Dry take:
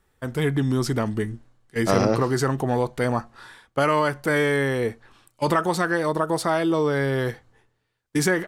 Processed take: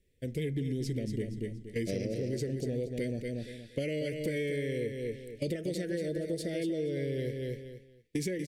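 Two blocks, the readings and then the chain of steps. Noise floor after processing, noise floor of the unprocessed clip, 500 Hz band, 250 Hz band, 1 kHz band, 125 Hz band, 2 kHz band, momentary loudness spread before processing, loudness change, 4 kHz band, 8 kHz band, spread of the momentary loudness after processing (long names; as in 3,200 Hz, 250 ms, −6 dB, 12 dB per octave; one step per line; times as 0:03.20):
−59 dBFS, −72 dBFS, −10.5 dB, −9.5 dB, below −35 dB, −9.0 dB, −17.0 dB, 9 LU, −11.5 dB, −11.0 dB, −13.0 dB, 6 LU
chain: Chebyshev band-stop filter 530–2,100 Hz, order 3
automatic gain control gain up to 4.5 dB
high-shelf EQ 4,700 Hz −5 dB
repeating echo 236 ms, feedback 22%, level −7.5 dB
downward compressor 5 to 1, threshold −27 dBFS, peak gain reduction 14 dB
level −4.5 dB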